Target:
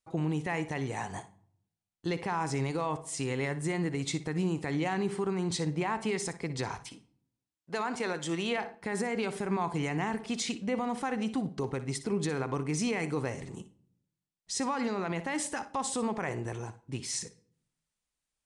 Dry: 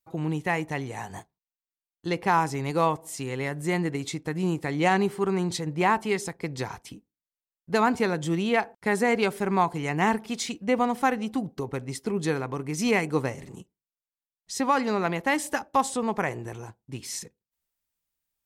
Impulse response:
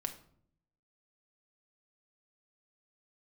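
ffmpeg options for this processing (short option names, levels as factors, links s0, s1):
-filter_complex "[0:a]asettb=1/sr,asplit=3[s0][s1][s2];[s0]atrim=end=6.814[s3];[s1]atrim=start=6.81:end=8.58,asetpts=PTS-STARTPTS,afade=t=in:d=0.004:c=qsin,afade=t=out:st=1.766:d=0.004:c=qsin,highpass=f=520:p=1[s4];[s2]atrim=start=8.576[s5];[s3][s4]acrossfade=d=0.004:c1=hsin:c2=qsin[s6];[s6][s5]acrossfade=d=0.004:c1=qsin:c2=hsin,alimiter=limit=0.075:level=0:latency=1:release=63,asplit=2[s7][s8];[1:a]atrim=start_sample=2205,adelay=59[s9];[s8][s9]afir=irnorm=-1:irlink=0,volume=0.224[s10];[s7][s10]amix=inputs=2:normalize=0,aresample=22050,aresample=44100"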